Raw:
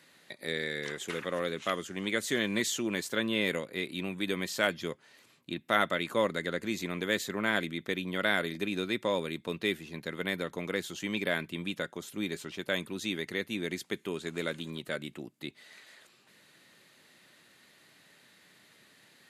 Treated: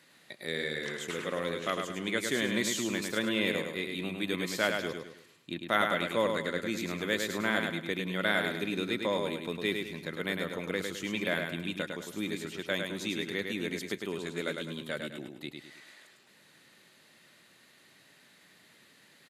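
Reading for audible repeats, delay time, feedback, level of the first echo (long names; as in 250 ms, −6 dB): 4, 104 ms, 38%, −5.0 dB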